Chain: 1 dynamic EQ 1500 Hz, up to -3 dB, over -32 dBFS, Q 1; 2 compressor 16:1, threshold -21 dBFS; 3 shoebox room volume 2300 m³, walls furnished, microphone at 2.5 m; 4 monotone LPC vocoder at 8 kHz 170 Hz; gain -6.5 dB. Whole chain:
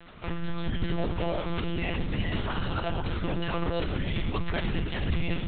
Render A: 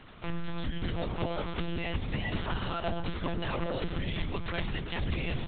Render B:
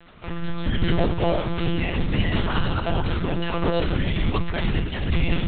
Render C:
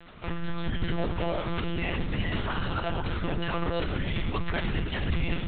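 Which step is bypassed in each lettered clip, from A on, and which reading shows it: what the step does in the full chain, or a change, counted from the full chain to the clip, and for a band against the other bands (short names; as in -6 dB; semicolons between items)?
3, loudness change -3.5 LU; 2, mean gain reduction 5.5 dB; 1, 2 kHz band +2.0 dB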